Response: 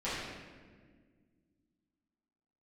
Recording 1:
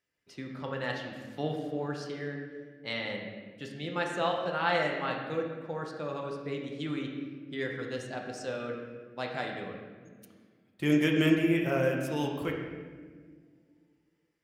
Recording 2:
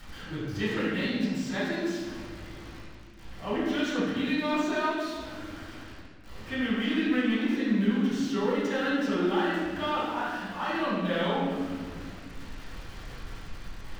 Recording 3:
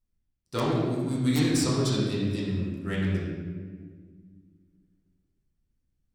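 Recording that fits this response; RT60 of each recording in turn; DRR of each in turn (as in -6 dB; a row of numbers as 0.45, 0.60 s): 2; 1.7, 1.7, 1.7 s; 0.0, -12.5, -8.0 dB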